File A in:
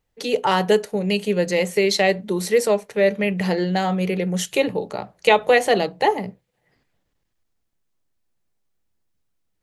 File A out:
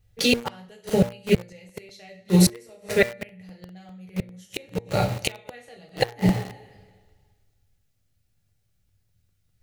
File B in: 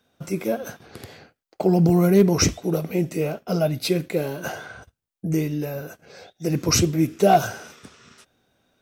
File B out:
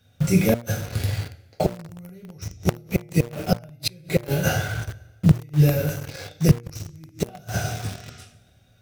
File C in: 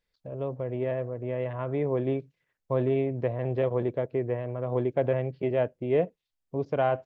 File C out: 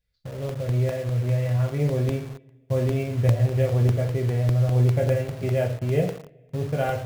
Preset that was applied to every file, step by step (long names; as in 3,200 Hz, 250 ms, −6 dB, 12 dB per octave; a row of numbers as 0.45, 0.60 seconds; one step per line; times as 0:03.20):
graphic EQ with 15 bands 100 Hz +10 dB, 400 Hz −4 dB, 1,000 Hz −10 dB
coupled-rooms reverb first 0.44 s, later 1.6 s, from −18 dB, DRR −0.5 dB
gate with flip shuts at −12 dBFS, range −31 dB
low shelf with overshoot 150 Hz +7.5 dB, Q 1.5
hum removal 118.1 Hz, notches 20
in parallel at −4.5 dB: bit-depth reduction 6 bits, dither none
on the sum: regular buffer underruns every 0.20 s, samples 64, repeat, from 0:00.49
loudness normalisation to −24 LKFS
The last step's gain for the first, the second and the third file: +2.5, +2.0, −3.0 decibels